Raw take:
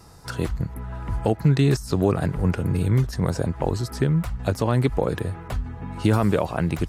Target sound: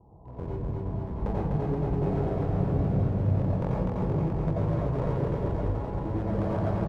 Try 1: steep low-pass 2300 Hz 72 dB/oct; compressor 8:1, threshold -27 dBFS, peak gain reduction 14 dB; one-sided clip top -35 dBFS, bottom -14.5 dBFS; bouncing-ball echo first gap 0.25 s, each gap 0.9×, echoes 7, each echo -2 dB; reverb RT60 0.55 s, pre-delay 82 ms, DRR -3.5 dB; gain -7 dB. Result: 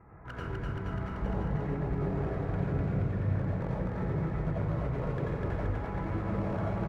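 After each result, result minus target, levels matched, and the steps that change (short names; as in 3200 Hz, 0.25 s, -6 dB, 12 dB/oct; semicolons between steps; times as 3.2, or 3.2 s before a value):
2000 Hz band +9.0 dB; compressor: peak gain reduction +6 dB
change: steep low-pass 1000 Hz 72 dB/oct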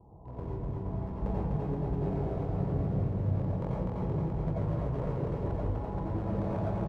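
compressor: peak gain reduction +6 dB
change: compressor 8:1, threshold -20 dBFS, peak gain reduction 7.5 dB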